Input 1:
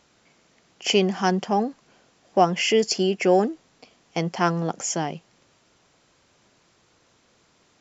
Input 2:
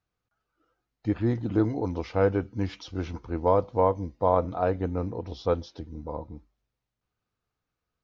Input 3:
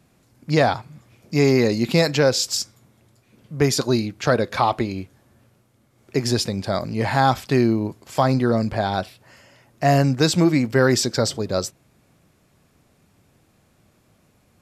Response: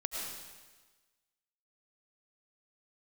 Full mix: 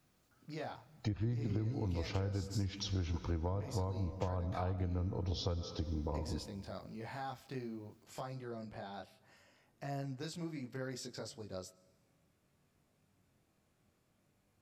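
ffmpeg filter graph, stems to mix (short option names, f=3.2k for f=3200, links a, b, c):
-filter_complex "[1:a]highshelf=f=3.4k:g=11,acrossover=split=170[a][b];[b]acompressor=threshold=-42dB:ratio=3[c];[a][c]amix=inputs=2:normalize=0,volume=2dB,asplit=2[d][e];[e]volume=-10.5dB[f];[2:a]acompressor=threshold=-33dB:ratio=2,flanger=delay=20:depth=4.9:speed=0.62,volume=-13dB,asplit=2[g][h];[h]volume=-22.5dB[i];[3:a]atrim=start_sample=2205[j];[f][i]amix=inputs=2:normalize=0[k];[k][j]afir=irnorm=-1:irlink=0[l];[d][g][l]amix=inputs=3:normalize=0,acompressor=threshold=-33dB:ratio=6"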